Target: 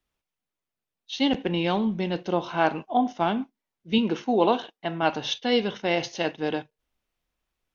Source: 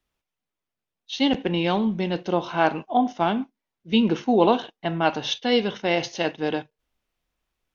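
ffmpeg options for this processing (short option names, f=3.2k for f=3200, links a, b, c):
-filter_complex "[0:a]asettb=1/sr,asplit=3[a][b][c];[a]atrim=end=3.984[d];[b]atrim=start=3.98:end=5.03,asetpts=PTS-STARTPTS,afade=t=in:d=0.004:c=qsin,afade=t=out:st=1.046:d=0.004:c=qsin,lowshelf=f=130:g=-11[e];[c]atrim=start=5.026[f];[d][e]acrossfade=d=0.004:c1=hsin:c2=qsin[g];[g][f]acrossfade=d=0.004:c1=qsin:c2=hsin,volume=-2dB"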